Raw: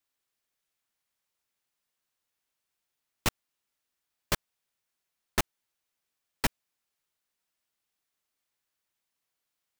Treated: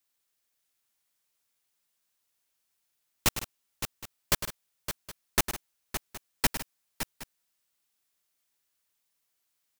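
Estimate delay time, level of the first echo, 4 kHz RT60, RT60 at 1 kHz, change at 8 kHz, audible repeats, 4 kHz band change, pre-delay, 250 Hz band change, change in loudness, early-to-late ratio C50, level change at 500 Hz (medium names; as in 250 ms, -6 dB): 104 ms, -11.0 dB, no reverb, no reverb, +6.5 dB, 4, +4.0 dB, no reverb, +1.0 dB, +0.5 dB, no reverb, +1.0 dB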